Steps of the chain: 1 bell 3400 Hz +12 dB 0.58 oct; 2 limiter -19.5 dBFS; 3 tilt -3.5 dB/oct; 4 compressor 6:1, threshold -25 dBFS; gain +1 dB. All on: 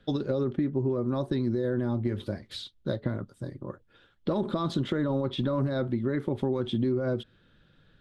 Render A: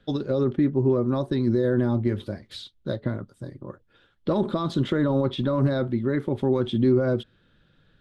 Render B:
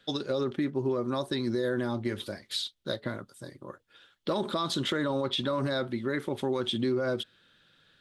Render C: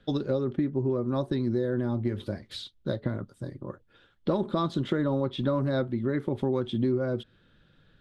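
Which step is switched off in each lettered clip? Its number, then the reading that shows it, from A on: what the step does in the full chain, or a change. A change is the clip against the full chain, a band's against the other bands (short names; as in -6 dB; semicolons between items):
4, mean gain reduction 3.5 dB; 3, 125 Hz band -9.5 dB; 2, mean gain reduction 2.0 dB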